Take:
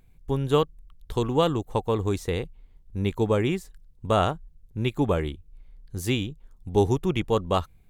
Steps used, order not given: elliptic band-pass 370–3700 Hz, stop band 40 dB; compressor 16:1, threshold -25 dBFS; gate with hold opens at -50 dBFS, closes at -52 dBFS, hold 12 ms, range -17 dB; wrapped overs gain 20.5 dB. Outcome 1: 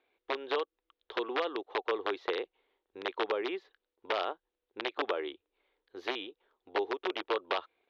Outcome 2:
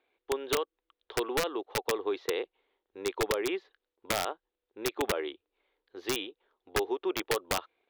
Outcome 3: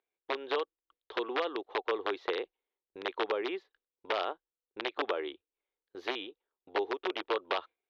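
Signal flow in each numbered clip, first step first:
gate with hold > compressor > wrapped overs > elliptic band-pass; gate with hold > elliptic band-pass > compressor > wrapped overs; compressor > wrapped overs > elliptic band-pass > gate with hold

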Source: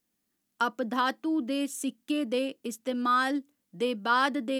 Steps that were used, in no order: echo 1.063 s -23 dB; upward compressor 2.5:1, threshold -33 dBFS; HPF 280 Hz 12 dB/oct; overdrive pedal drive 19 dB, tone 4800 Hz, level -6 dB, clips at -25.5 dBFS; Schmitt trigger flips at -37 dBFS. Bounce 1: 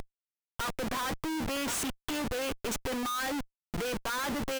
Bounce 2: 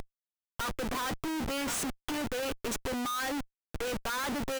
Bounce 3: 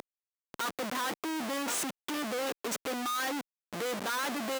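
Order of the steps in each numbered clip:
HPF > overdrive pedal > echo > upward compressor > Schmitt trigger; overdrive pedal > echo > upward compressor > HPF > Schmitt trigger; overdrive pedal > echo > upward compressor > Schmitt trigger > HPF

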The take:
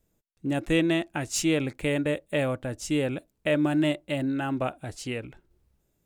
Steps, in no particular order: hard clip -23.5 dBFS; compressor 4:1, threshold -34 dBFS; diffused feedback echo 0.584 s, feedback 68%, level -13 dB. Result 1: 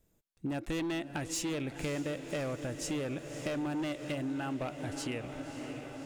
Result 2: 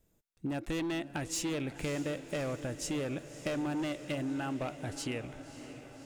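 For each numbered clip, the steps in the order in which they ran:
hard clip > diffused feedback echo > compressor; hard clip > compressor > diffused feedback echo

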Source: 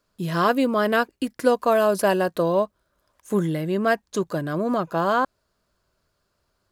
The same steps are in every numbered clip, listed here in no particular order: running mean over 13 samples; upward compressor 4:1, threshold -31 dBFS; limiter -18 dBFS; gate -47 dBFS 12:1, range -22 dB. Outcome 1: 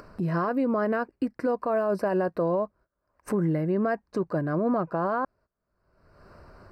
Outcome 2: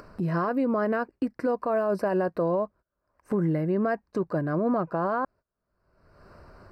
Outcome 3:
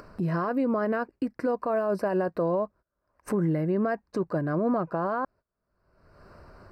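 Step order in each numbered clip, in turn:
gate > running mean > limiter > upward compressor; running mean > limiter > gate > upward compressor; limiter > gate > running mean > upward compressor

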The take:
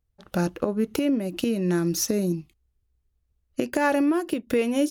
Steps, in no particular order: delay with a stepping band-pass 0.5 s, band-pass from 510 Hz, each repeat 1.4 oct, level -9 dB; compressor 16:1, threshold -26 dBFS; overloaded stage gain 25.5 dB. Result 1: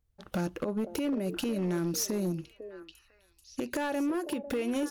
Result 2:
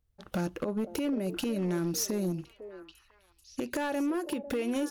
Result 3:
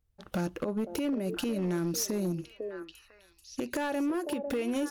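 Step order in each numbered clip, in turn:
compressor > delay with a stepping band-pass > overloaded stage; compressor > overloaded stage > delay with a stepping band-pass; delay with a stepping band-pass > compressor > overloaded stage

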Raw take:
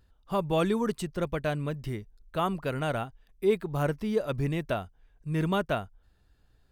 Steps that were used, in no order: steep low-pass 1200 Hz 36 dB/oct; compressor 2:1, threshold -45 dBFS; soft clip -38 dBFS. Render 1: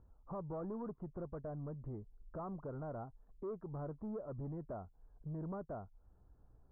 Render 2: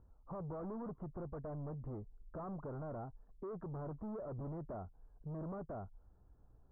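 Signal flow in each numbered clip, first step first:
compressor > soft clip > steep low-pass; soft clip > steep low-pass > compressor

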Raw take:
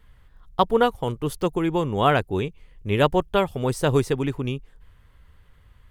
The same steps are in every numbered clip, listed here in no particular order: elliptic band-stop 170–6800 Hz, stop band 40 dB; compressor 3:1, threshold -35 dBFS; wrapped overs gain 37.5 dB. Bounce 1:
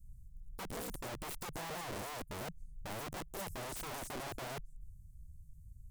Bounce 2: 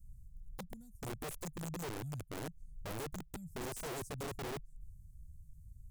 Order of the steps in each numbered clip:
elliptic band-stop > compressor > wrapped overs; compressor > elliptic band-stop > wrapped overs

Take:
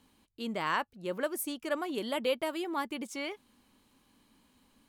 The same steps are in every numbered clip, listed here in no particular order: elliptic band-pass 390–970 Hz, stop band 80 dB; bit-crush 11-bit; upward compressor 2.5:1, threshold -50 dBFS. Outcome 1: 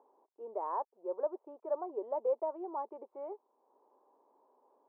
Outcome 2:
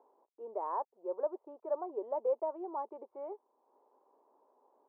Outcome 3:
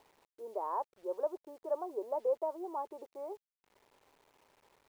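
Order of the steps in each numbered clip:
upward compressor > bit-crush > elliptic band-pass; bit-crush > upward compressor > elliptic band-pass; upward compressor > elliptic band-pass > bit-crush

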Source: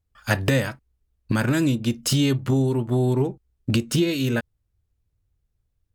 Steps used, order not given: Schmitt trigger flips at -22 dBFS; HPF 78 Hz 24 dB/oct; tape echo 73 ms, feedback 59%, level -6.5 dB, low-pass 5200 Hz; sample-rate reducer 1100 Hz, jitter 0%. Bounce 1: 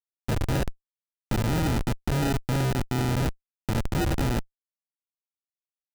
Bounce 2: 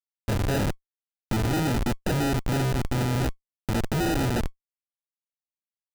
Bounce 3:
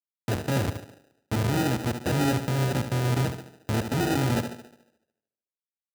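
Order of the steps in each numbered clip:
tape echo > HPF > sample-rate reducer > Schmitt trigger; tape echo > HPF > Schmitt trigger > sample-rate reducer; Schmitt trigger > tape echo > sample-rate reducer > HPF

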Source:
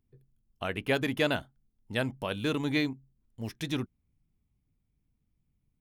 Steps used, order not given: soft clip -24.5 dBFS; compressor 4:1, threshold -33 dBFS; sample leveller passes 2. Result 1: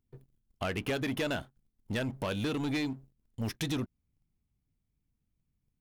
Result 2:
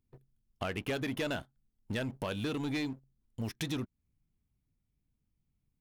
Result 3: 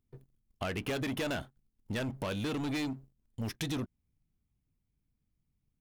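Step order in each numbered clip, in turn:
compressor > soft clip > sample leveller; sample leveller > compressor > soft clip; soft clip > sample leveller > compressor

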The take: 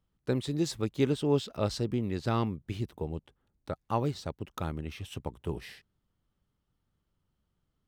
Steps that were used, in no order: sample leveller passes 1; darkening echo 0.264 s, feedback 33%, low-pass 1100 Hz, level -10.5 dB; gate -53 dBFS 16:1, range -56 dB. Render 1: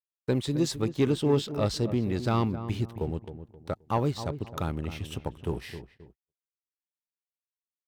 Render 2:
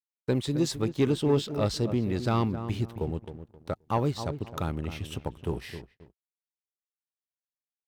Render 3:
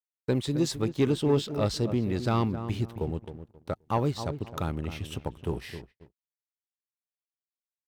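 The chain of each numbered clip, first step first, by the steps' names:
sample leveller > darkening echo > gate; darkening echo > sample leveller > gate; darkening echo > gate > sample leveller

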